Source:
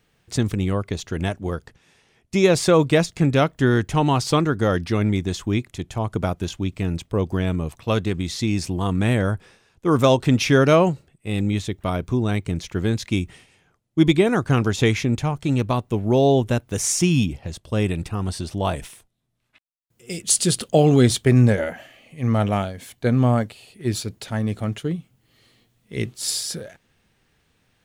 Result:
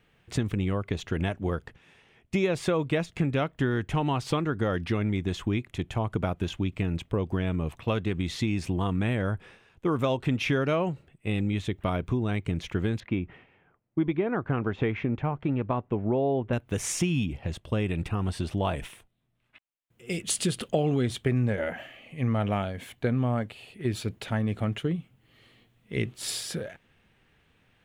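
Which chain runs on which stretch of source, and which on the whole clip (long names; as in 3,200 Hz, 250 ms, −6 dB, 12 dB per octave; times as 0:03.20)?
0:13.00–0:16.53: low-pass filter 1,700 Hz + low-shelf EQ 140 Hz −7 dB
whole clip: high shelf with overshoot 3,800 Hz −7.5 dB, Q 1.5; downward compressor 4 to 1, threshold −24 dBFS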